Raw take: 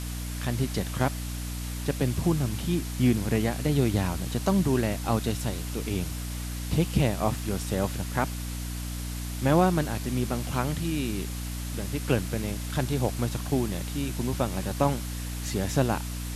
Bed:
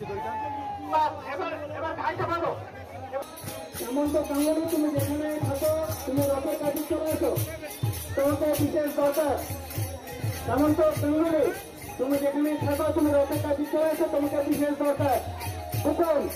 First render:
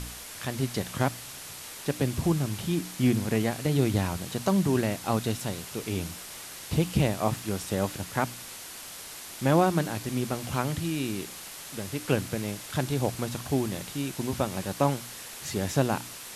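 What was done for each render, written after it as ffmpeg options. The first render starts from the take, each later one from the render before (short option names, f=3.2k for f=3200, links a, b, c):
-af "bandreject=f=60:t=h:w=4,bandreject=f=120:t=h:w=4,bandreject=f=180:t=h:w=4,bandreject=f=240:t=h:w=4,bandreject=f=300:t=h:w=4"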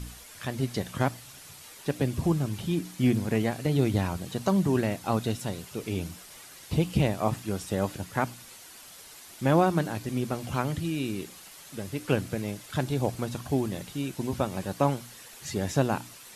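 -af "afftdn=nr=8:nf=-42"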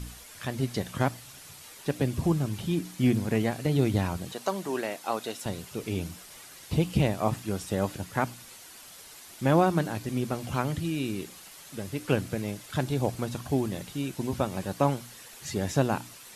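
-filter_complex "[0:a]asettb=1/sr,asplit=3[a][b][c];[a]atrim=end=4.324[d];[b]atrim=start=4.32:end=5.46,asetpts=PTS-STARTPTS,afade=t=in:d=0.004:c=qsin,afade=t=out:st=1.136:d=0.004:c=qsin,highpass=420[e];[c]atrim=start=5.456[f];[d][e]acrossfade=d=0.004:c1=hsin:c2=qsin[g];[g][f]acrossfade=d=0.004:c1=qsin:c2=hsin"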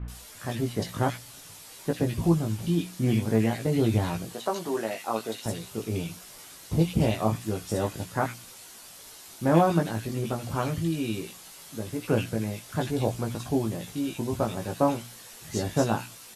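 -filter_complex "[0:a]asplit=2[a][b];[b]adelay=18,volume=-4dB[c];[a][c]amix=inputs=2:normalize=0,acrossover=split=2000[d][e];[e]adelay=80[f];[d][f]amix=inputs=2:normalize=0"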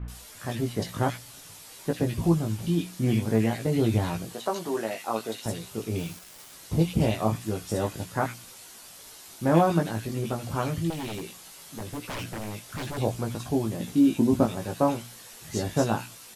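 -filter_complex "[0:a]asplit=3[a][b][c];[a]afade=t=out:st=5.97:d=0.02[d];[b]acrusher=bits=6:mix=0:aa=0.5,afade=t=in:st=5.97:d=0.02,afade=t=out:st=6.53:d=0.02[e];[c]afade=t=in:st=6.53:d=0.02[f];[d][e][f]amix=inputs=3:normalize=0,asettb=1/sr,asplit=3[g][h][i];[g]atrim=end=10.904[j];[h]atrim=start=10.9:end=12.98,asetpts=PTS-STARTPTS,afade=t=in:d=0.004:c=qsin,afade=t=out:st=2.076:d=0.004:c=qsin,aeval=exprs='0.0376*(abs(mod(val(0)/0.0376+3,4)-2)-1)':c=same[k];[i]atrim=start=12.976[l];[j][k]acrossfade=d=0.004:c1=hsin:c2=qsin[m];[m][l]acrossfade=d=0.004:c1=qsin:c2=hsin,asettb=1/sr,asplit=3[n][o][p];[n]atrim=end=13.804[q];[o]atrim=start=13.8:end=14.46,asetpts=PTS-STARTPTS,afade=t=in:d=0.004:c=qsin,afade=t=out:st=0.656:d=0.004:c=qsin,equalizer=f=250:t=o:w=1.1:g=12[r];[p]atrim=start=14.456[s];[q][r]acrossfade=d=0.004:c1=hsin:c2=qsin[t];[t][s]acrossfade=d=0.004:c1=qsin:c2=hsin"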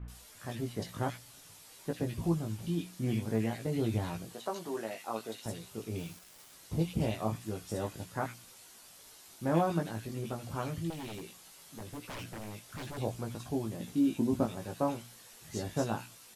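-af "volume=-8dB"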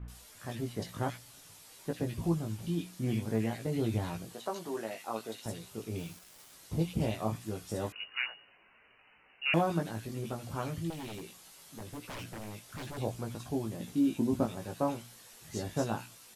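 -filter_complex "[0:a]asettb=1/sr,asplit=3[a][b][c];[a]atrim=end=7.924[d];[b]atrim=start=7.92:end=9.54,asetpts=PTS-STARTPTS,afade=t=in:d=0.004:c=qsin,afade=t=out:st=1.616:d=0.004:c=qsin,lowpass=f=2.6k:t=q:w=0.5098,lowpass=f=2.6k:t=q:w=0.6013,lowpass=f=2.6k:t=q:w=0.9,lowpass=f=2.6k:t=q:w=2.563,afreqshift=-3000[e];[c]atrim=start=9.536[f];[d][e]acrossfade=d=0.004:c1=hsin:c2=qsin[g];[g][f]acrossfade=d=0.004:c1=qsin:c2=hsin"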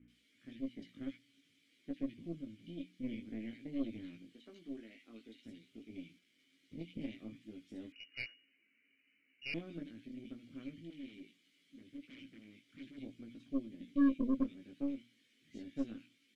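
-filter_complex "[0:a]asplit=3[a][b][c];[a]bandpass=f=270:t=q:w=8,volume=0dB[d];[b]bandpass=f=2.29k:t=q:w=8,volume=-6dB[e];[c]bandpass=f=3.01k:t=q:w=8,volume=-9dB[f];[d][e][f]amix=inputs=3:normalize=0,aeval=exprs='0.0794*(cos(1*acos(clip(val(0)/0.0794,-1,1)))-cos(1*PI/2))+0.00794*(cos(6*acos(clip(val(0)/0.0794,-1,1)))-cos(6*PI/2))':c=same"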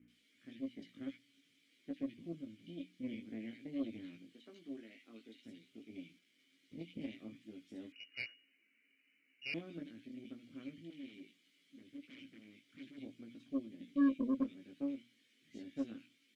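-af "highpass=f=160:p=1"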